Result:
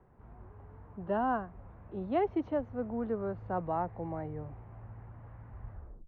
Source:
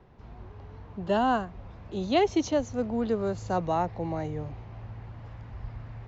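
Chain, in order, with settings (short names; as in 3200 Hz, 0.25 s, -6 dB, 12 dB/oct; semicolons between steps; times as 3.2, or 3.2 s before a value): tape stop at the end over 0.40 s; ladder low-pass 2100 Hz, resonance 20%; gain -1.5 dB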